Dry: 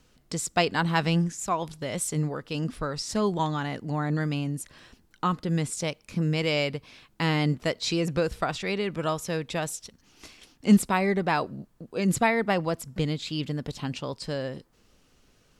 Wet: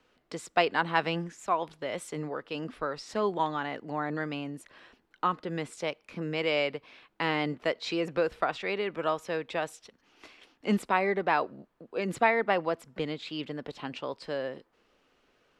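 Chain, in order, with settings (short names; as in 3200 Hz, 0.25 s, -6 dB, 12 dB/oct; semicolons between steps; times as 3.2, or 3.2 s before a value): three-band isolator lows -16 dB, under 290 Hz, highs -16 dB, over 3500 Hz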